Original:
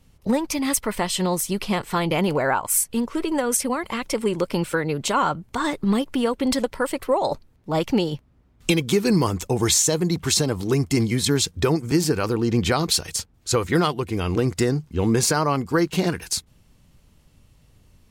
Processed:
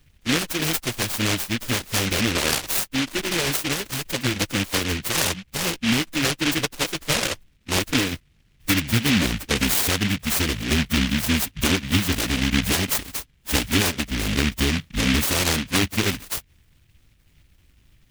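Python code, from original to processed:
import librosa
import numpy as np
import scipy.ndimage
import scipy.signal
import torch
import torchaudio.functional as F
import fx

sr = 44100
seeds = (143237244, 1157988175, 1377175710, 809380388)

y = fx.pitch_keep_formants(x, sr, semitones=-9.5)
y = fx.noise_mod_delay(y, sr, seeds[0], noise_hz=2400.0, depth_ms=0.4)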